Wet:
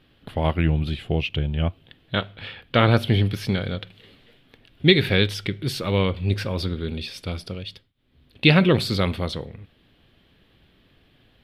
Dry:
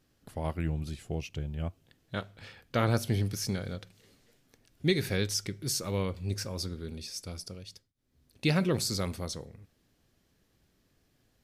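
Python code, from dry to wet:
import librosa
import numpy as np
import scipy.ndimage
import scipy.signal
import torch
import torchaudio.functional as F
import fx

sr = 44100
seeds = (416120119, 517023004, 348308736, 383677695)

y = fx.high_shelf_res(x, sr, hz=4600.0, db=-12.0, q=3.0)
y = fx.rider(y, sr, range_db=3, speed_s=2.0)
y = y * librosa.db_to_amplitude(8.5)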